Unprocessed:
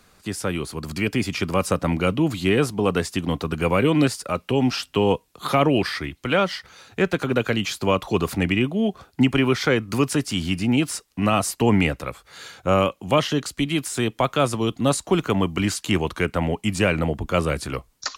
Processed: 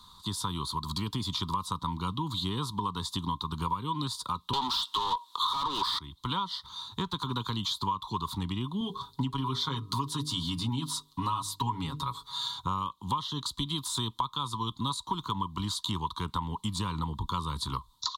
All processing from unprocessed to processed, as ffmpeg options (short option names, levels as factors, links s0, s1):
-filter_complex "[0:a]asettb=1/sr,asplit=3[s0][s1][s2];[s0]atrim=end=4.534[s3];[s1]atrim=start=4.53:end=5.99,asetpts=PTS-STARTPTS,afade=t=in:d=0.004:c=qsin,afade=t=out:st=1.456:d=0.004:c=qsin,highpass=350,asplit=2[s4][s5];[s5]highpass=f=720:p=1,volume=35.5,asoftclip=type=tanh:threshold=0.447[s6];[s4][s6]amix=inputs=2:normalize=0,lowpass=f=3700:p=1,volume=0.501[s7];[s2]atrim=start=5.986[s8];[s3][s7]acrossfade=d=0.004:c1=hsin:c2=qsin[s9];[s9][s8]acrossfade=d=0.004:c1=qsin:c2=hsin,asettb=1/sr,asplit=3[s10][s11][s12];[s10]atrim=end=8.804[s13];[s11]atrim=start=8.8:end=12.6,asetpts=PTS-STARTPTS,afade=t=in:d=0.004:c=qsin,afade=t=out:st=3.796:d=0.004:c=qsin,bandreject=f=50:t=h:w=6,bandreject=f=100:t=h:w=6,bandreject=f=150:t=h:w=6,bandreject=f=200:t=h:w=6,bandreject=f=250:t=h:w=6,bandreject=f=300:t=h:w=6,bandreject=f=350:t=h:w=6,bandreject=f=400:t=h:w=6,bandreject=f=450:t=h:w=6,aecho=1:1:7.3:0.75,atrim=end_sample=167580[s14];[s12]atrim=start=12.596[s15];[s13][s14]acrossfade=d=0.004:c1=hsin:c2=qsin[s16];[s16][s15]acrossfade=d=0.004:c1=qsin:c2=hsin,firequalizer=gain_entry='entry(110,0);entry(430,-14);entry(640,-28);entry(970,15);entry(1500,-13);entry(2500,-19);entry(3600,14);entry(5200,-3)':delay=0.05:min_phase=1,acompressor=threshold=0.0355:ratio=6"